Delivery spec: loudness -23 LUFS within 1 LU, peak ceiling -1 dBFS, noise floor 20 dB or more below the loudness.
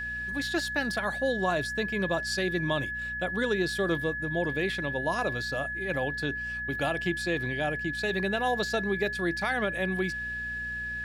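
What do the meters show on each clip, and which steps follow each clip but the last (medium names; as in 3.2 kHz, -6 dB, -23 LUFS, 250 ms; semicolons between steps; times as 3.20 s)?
hum 60 Hz; highest harmonic 240 Hz; hum level -42 dBFS; steady tone 1.7 kHz; tone level -32 dBFS; loudness -29.5 LUFS; peak level -15.0 dBFS; loudness target -23.0 LUFS
-> de-hum 60 Hz, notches 4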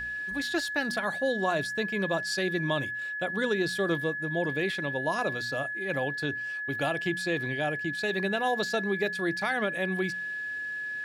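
hum not found; steady tone 1.7 kHz; tone level -32 dBFS
-> band-stop 1.7 kHz, Q 30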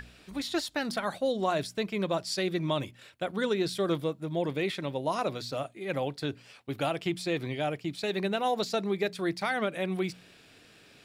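steady tone not found; loudness -31.5 LUFS; peak level -16.0 dBFS; loudness target -23.0 LUFS
-> trim +8.5 dB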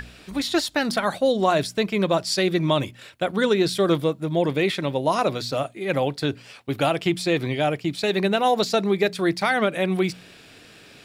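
loudness -23.0 LUFS; peak level -7.5 dBFS; noise floor -48 dBFS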